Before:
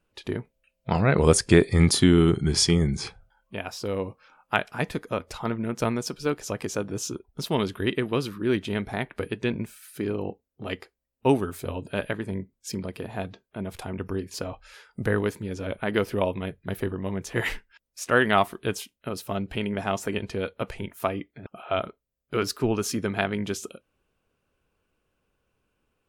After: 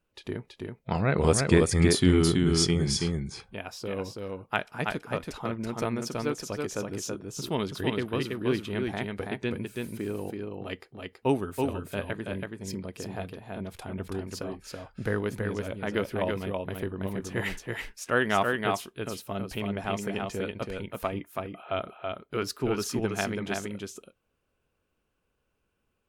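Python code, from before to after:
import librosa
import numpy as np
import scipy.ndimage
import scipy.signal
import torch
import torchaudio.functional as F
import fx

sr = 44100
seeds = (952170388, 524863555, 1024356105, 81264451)

y = x + 10.0 ** (-3.5 / 20.0) * np.pad(x, (int(328 * sr / 1000.0), 0))[:len(x)]
y = y * 10.0 ** (-4.5 / 20.0)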